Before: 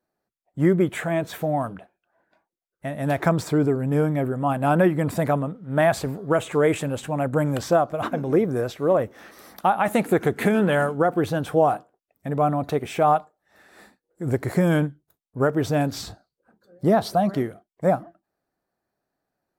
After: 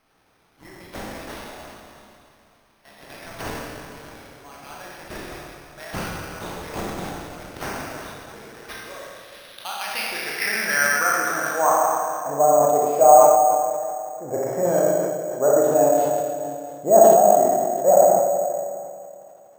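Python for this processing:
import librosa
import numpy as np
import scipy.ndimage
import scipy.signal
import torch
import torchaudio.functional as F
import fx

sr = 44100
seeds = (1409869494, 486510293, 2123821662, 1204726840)

p1 = scipy.signal.sosfilt(scipy.signal.butter(2, 10000.0, 'lowpass', fs=sr, output='sos'), x)
p2 = fx.high_shelf(p1, sr, hz=7800.0, db=11.5)
p3 = fx.dmg_noise_colour(p2, sr, seeds[0], colour='pink', level_db=-60.0)
p4 = fx.filter_sweep_bandpass(p3, sr, from_hz=6900.0, to_hz=640.0, start_s=8.46, end_s=12.46, q=3.6)
p5 = p4 + fx.echo_single(p4, sr, ms=658, db=-18.0, dry=0)
p6 = fx.rev_schroeder(p5, sr, rt60_s=2.3, comb_ms=28, drr_db=-4.5)
p7 = np.repeat(p6[::6], 6)[:len(p6)]
p8 = fx.sustainer(p7, sr, db_per_s=33.0)
y = p8 * librosa.db_to_amplitude(6.0)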